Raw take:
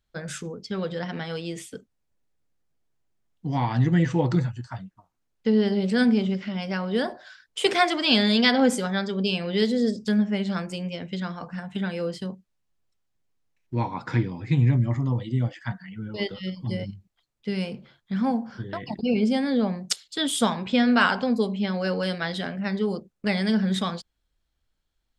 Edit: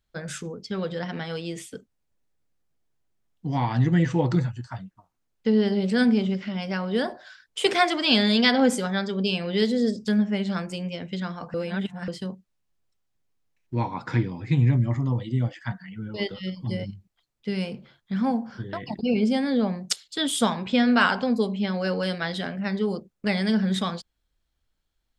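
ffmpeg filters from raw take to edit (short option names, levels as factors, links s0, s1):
-filter_complex "[0:a]asplit=3[s0][s1][s2];[s0]atrim=end=11.542[s3];[s1]atrim=start=11.538:end=12.082,asetpts=PTS-STARTPTS,areverse[s4];[s2]atrim=start=12.078[s5];[s3][s4]acrossfade=d=0.004:c1=hsin:c2=hsin[s6];[s6][s5]acrossfade=d=0.004:c1=hsin:c2=hsin"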